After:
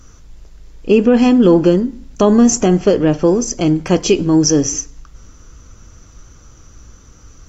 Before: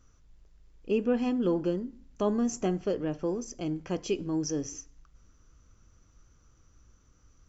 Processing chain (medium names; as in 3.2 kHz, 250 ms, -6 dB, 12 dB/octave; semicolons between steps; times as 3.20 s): tone controls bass +1 dB, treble +4 dB; loudness maximiser +19 dB; trim -1 dB; AAC 48 kbps 48 kHz